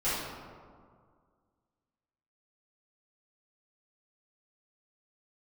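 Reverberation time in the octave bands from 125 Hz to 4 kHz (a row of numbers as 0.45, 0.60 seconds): 2.2, 2.1, 2.0, 2.0, 1.3, 0.85 seconds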